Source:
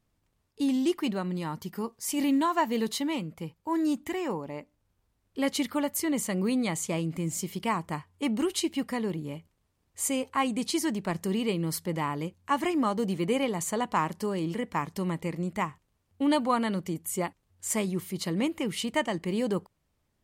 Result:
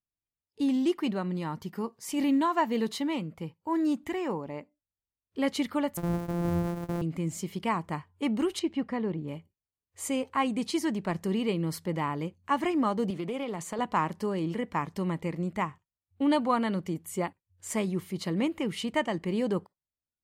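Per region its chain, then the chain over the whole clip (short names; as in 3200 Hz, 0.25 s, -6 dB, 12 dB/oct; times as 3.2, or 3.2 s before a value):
5.97–7.02 sample sorter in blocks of 256 samples + bell 3300 Hz -14 dB 2.7 oct
8.59–9.28 LPF 7600 Hz + high shelf 3600 Hz -12 dB
13.1–13.79 HPF 150 Hz + compressor, threshold -29 dBFS + Doppler distortion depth 0.14 ms
whole clip: spectral noise reduction 26 dB; high shelf 5200 Hz -9.5 dB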